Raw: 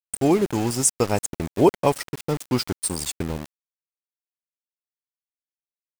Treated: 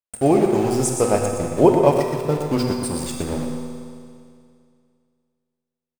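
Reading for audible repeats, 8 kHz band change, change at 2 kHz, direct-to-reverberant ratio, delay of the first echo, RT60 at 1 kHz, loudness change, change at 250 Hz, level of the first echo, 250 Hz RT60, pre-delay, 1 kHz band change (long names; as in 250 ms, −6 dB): 1, −3.0 dB, +0.5 dB, 0.5 dB, 120 ms, 2.3 s, +3.5 dB, +3.5 dB, −8.0 dB, 2.3 s, 8 ms, +4.0 dB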